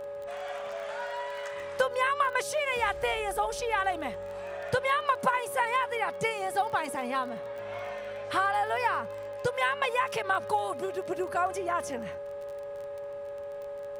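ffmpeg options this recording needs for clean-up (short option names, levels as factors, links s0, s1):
-af "adeclick=t=4,bandreject=f=415.8:t=h:w=4,bandreject=f=831.6:t=h:w=4,bandreject=f=1247.4:t=h:w=4,bandreject=f=1663.2:t=h:w=4,bandreject=f=570:w=30"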